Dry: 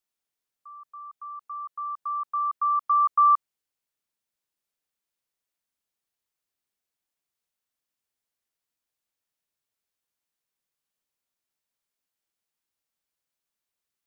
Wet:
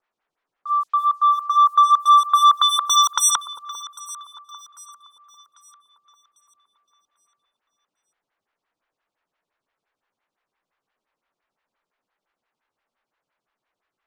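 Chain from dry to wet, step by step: tilt shelf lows -9 dB, about 1.3 kHz; sine folder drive 13 dB, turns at -14.5 dBFS; waveshaping leveller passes 1; level-controlled noise filter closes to 1.3 kHz, open at -20 dBFS; echo whose repeats swap between lows and highs 398 ms, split 1.2 kHz, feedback 62%, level -13.5 dB; lamp-driven phase shifter 5.8 Hz; trim +6 dB

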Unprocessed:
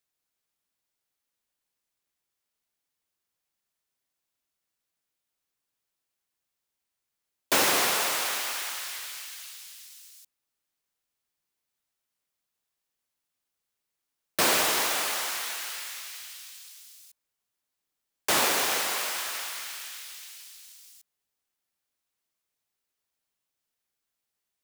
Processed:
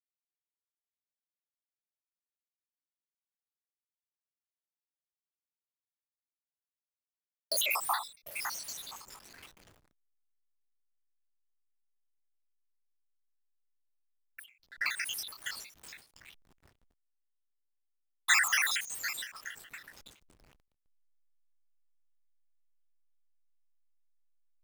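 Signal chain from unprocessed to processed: random holes in the spectrogram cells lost 82%; Chebyshev shaper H 7 -40 dB, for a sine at -15.5 dBFS; 14.46–14.86 s: distance through air 400 m; high-pass sweep 850 Hz -> 1.8 kHz, 12.63–14.69 s; peaking EQ 300 Hz -15 dB 1.9 oct; hysteresis with a dead band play -41.5 dBFS; endings held to a fixed fall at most 140 dB/s; trim +3.5 dB

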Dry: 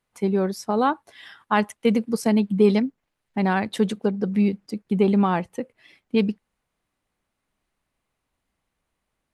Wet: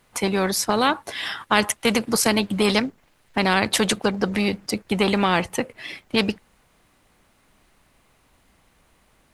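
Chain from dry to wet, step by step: spectrum-flattening compressor 2:1; trim +4 dB

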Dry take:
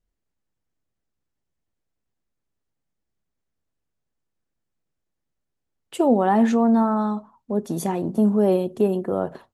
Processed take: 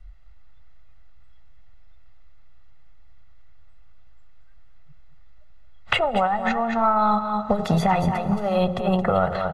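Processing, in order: in parallel at -12 dB: saturation -17 dBFS, distortion -12 dB; on the sum: de-hum 89.58 Hz, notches 15; compressor with a negative ratio -23 dBFS, ratio -0.5; graphic EQ 125/250/500/1000/2000/4000 Hz -4/-10/-4/+11/+9/+9 dB; spectral noise reduction 23 dB; RIAA curve playback; comb 1.5 ms, depth 77%; delay 222 ms -10 dB; on a send at -20.5 dB: reverberation RT60 2.8 s, pre-delay 18 ms; on the sum: three bands compressed up and down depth 100%; trim -1.5 dB

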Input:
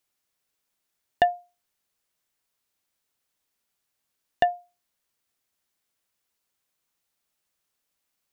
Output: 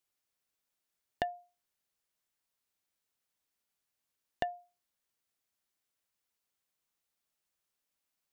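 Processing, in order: compression 6:1, threshold -24 dBFS, peak gain reduction 9 dB; trim -6.5 dB

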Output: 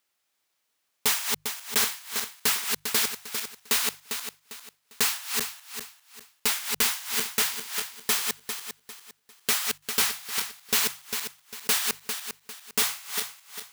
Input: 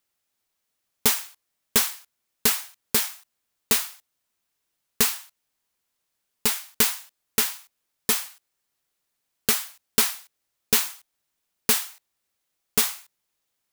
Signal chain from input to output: backward echo that repeats 200 ms, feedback 54%, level -7 dB; low-pass 2.6 kHz 6 dB/octave; tilt EQ +2.5 dB/octave; hum notches 50/100/150 Hz; saturation -21 dBFS, distortion -9 dB; trim +3.5 dB

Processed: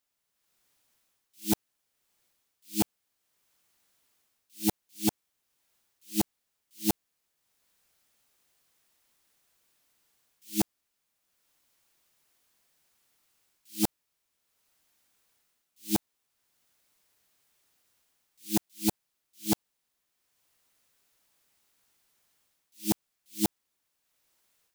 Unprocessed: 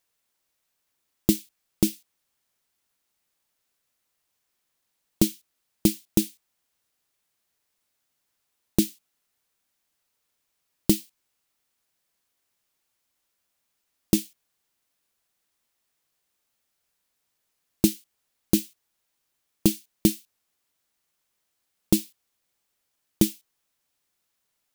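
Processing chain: reverse the whole clip; level rider gain up to 11.5 dB; wavefolder -10 dBFS; trim -6 dB

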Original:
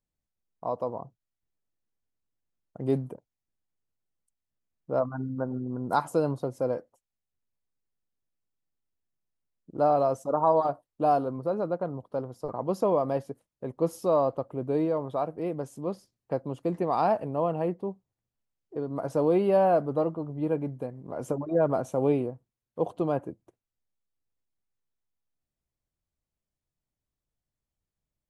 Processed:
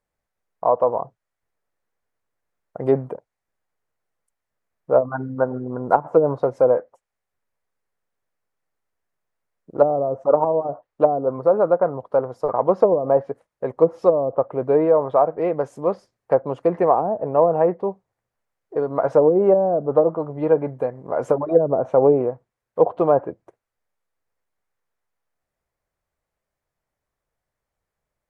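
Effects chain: high-order bell 960 Hz +10.5 dB 2.7 oct; low-pass that closes with the level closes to 330 Hz, closed at -10.5 dBFS; trim +3 dB

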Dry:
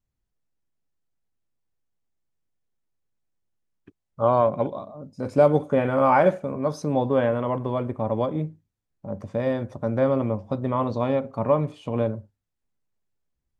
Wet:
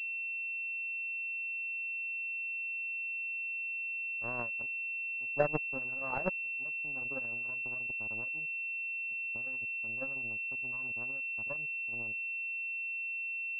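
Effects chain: expander on every frequency bin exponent 2; in parallel at 0 dB: compressor with a negative ratio -34 dBFS, ratio -1; on the sum: power-law waveshaper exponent 3; class-D stage that switches slowly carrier 2.7 kHz; trim -4.5 dB

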